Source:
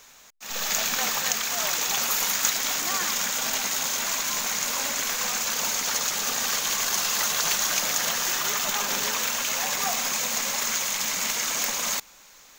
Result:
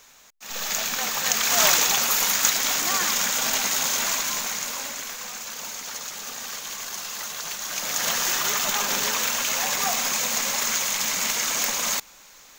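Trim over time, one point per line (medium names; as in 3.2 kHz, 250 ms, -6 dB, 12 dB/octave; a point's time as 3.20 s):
1.11 s -1 dB
1.65 s +9 dB
2.00 s +3 dB
4.05 s +3 dB
5.23 s -8 dB
7.60 s -8 dB
8.10 s +2 dB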